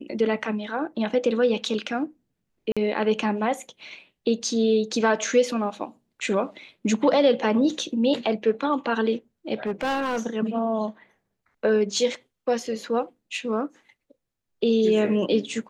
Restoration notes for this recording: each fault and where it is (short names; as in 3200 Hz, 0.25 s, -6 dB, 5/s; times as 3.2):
2.72–2.77 gap 46 ms
9.66–10.27 clipped -22 dBFS